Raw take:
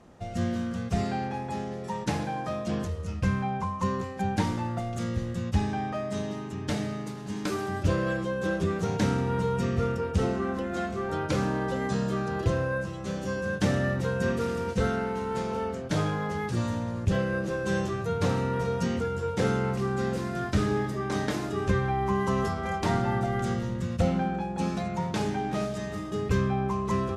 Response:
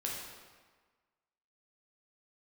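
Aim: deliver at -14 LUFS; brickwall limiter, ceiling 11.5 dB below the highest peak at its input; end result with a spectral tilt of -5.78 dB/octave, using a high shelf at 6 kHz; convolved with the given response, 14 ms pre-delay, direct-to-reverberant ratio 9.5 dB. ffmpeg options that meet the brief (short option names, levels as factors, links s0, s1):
-filter_complex "[0:a]highshelf=f=6000:g=6.5,alimiter=limit=0.075:level=0:latency=1,asplit=2[s0][s1];[1:a]atrim=start_sample=2205,adelay=14[s2];[s1][s2]afir=irnorm=-1:irlink=0,volume=0.251[s3];[s0][s3]amix=inputs=2:normalize=0,volume=7.5"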